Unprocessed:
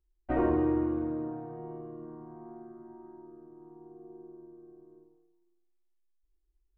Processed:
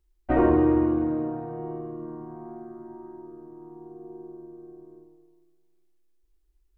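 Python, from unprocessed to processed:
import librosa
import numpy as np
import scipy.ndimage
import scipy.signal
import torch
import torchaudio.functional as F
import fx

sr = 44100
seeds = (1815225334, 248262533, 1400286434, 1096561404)

y = fx.echo_feedback(x, sr, ms=406, feedback_pct=30, wet_db=-19.0)
y = y * 10.0 ** (7.0 / 20.0)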